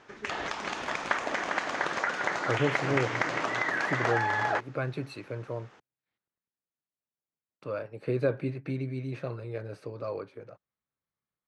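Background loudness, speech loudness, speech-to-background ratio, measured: -30.0 LUFS, -34.5 LUFS, -4.5 dB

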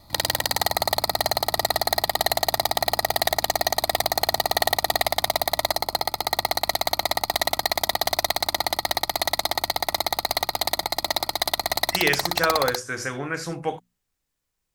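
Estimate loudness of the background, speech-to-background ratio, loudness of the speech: -23.5 LUFS, -2.5 dB, -26.0 LUFS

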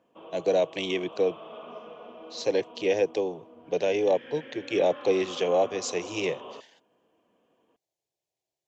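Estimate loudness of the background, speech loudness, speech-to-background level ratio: -44.5 LUFS, -27.5 LUFS, 17.0 dB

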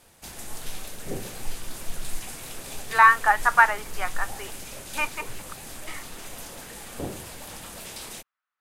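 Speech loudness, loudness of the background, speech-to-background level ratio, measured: -20.5 LUFS, -38.0 LUFS, 17.5 dB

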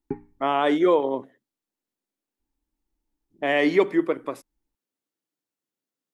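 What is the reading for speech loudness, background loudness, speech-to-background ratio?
-23.0 LUFS, -37.5 LUFS, 14.5 dB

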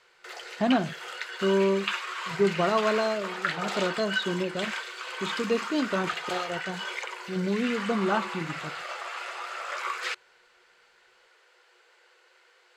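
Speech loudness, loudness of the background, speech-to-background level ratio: -29.0 LUFS, -33.5 LUFS, 4.5 dB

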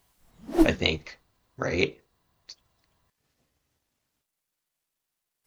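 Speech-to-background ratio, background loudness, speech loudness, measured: -2.5 dB, -26.0 LUFS, -28.5 LUFS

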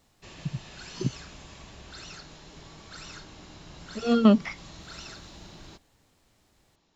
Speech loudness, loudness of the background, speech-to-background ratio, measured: -26.0 LUFS, -45.0 LUFS, 19.0 dB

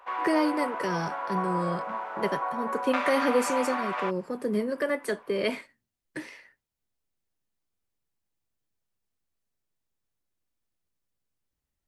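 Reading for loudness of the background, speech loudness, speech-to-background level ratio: -31.5 LUFS, -29.5 LUFS, 2.0 dB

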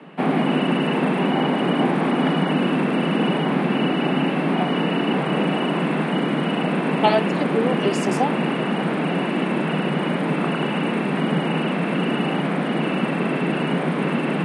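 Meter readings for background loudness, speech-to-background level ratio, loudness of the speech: -21.5 LUFS, -3.0 dB, -24.5 LUFS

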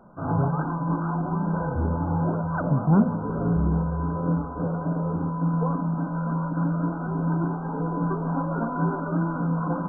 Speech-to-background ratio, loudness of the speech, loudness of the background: 3.0 dB, -23.5 LUFS, -26.5 LUFS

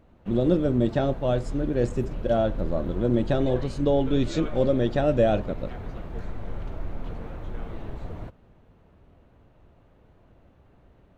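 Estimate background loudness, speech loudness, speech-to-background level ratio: -37.5 LUFS, -25.0 LUFS, 12.5 dB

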